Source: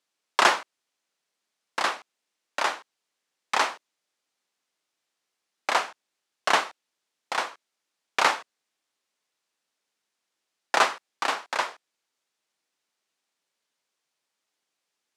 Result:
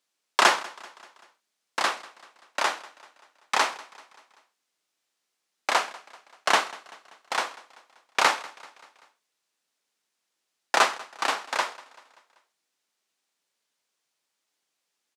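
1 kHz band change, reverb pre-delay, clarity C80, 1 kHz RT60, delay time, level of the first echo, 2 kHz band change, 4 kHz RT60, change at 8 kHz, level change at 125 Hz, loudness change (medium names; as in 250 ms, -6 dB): 0.0 dB, no reverb, no reverb, no reverb, 193 ms, -21.0 dB, +0.5 dB, no reverb, +2.5 dB, no reading, +0.5 dB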